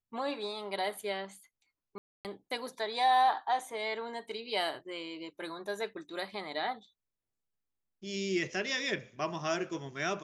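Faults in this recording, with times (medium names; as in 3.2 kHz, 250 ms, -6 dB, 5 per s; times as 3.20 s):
1.98–2.25 s: dropout 268 ms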